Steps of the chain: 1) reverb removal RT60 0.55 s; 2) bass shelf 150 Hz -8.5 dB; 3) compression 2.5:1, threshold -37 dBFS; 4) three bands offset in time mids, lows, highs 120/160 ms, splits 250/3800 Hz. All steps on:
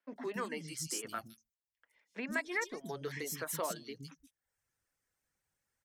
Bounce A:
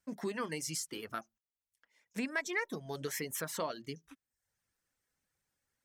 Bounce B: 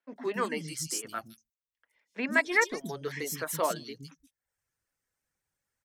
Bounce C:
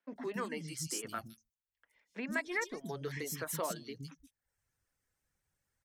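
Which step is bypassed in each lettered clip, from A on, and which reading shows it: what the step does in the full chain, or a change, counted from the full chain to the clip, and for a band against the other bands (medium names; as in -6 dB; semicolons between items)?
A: 4, echo-to-direct -20.0 dB to none; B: 3, mean gain reduction 5.0 dB; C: 2, 125 Hz band +3.5 dB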